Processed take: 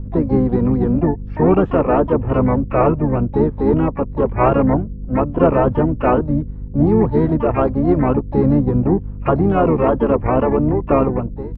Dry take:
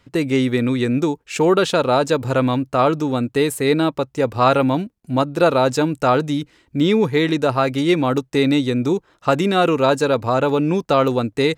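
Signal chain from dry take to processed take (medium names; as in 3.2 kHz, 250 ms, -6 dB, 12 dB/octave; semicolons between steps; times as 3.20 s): fade out at the end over 0.67 s; in parallel at -5.5 dB: hard clipper -14 dBFS, distortion -12 dB; on the sum: hum 50 Hz, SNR 12 dB; reverse; upward compressor, threshold -33 dBFS; reverse; low-pass 1.2 kHz 24 dB/octave; harmony voices -12 st -5 dB, -4 st -6 dB, +12 st -13 dB; trim -3 dB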